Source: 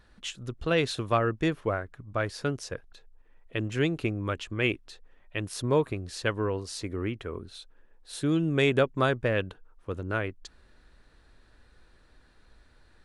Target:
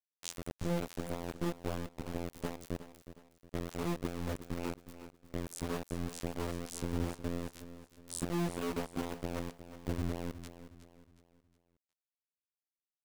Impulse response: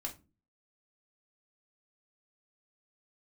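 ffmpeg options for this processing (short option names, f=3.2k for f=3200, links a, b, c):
-af "firequalizer=gain_entry='entry(220,0);entry(1100,-29);entry(7900,-8)':delay=0.05:min_phase=1,acompressor=threshold=-45dB:ratio=4,afftfilt=real='hypot(re,im)*cos(PI*b)':imag='0':win_size=2048:overlap=0.75,aeval=exprs='val(0)*gte(abs(val(0)),0.00422)':c=same,aecho=1:1:364|728|1092|1456:0.224|0.0873|0.0341|0.0133,volume=14.5dB"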